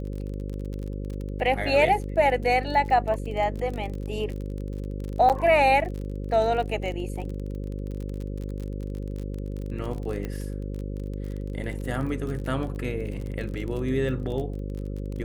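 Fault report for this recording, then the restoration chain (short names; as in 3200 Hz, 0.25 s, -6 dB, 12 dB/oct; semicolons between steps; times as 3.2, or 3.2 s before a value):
buzz 50 Hz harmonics 11 -32 dBFS
crackle 32/s -32 dBFS
5.29–5.3 gap 8.3 ms
10.25 pop -20 dBFS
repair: de-click; de-hum 50 Hz, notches 11; interpolate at 5.29, 8.3 ms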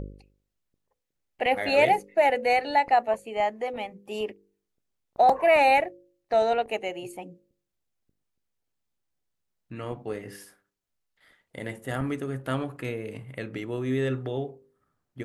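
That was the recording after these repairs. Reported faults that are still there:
none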